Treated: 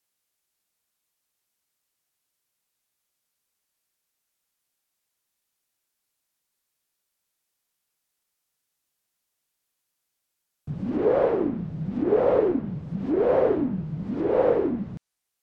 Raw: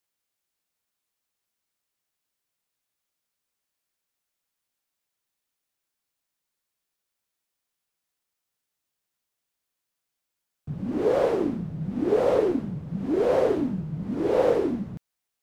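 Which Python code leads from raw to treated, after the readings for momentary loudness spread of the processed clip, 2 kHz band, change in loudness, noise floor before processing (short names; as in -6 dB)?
11 LU, -1.0 dB, +1.0 dB, -84 dBFS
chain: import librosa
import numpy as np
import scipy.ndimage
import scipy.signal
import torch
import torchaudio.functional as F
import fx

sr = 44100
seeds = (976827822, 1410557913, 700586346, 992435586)

y = fx.env_lowpass_down(x, sr, base_hz=2000.0, full_db=-22.0)
y = fx.rider(y, sr, range_db=5, speed_s=2.0)
y = fx.high_shelf(y, sr, hz=5700.0, db=5.0)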